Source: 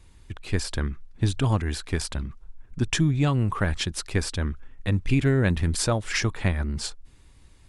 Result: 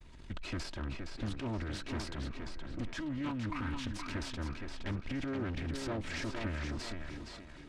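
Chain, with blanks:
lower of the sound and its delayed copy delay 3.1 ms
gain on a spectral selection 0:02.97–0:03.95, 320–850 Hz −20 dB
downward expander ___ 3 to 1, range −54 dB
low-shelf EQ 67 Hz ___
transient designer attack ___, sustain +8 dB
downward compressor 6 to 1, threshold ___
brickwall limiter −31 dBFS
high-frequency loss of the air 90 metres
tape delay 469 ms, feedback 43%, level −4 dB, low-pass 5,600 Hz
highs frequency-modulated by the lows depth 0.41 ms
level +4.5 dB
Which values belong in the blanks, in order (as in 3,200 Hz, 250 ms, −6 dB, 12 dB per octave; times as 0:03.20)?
−49 dBFS, −3 dB, −7 dB, −41 dBFS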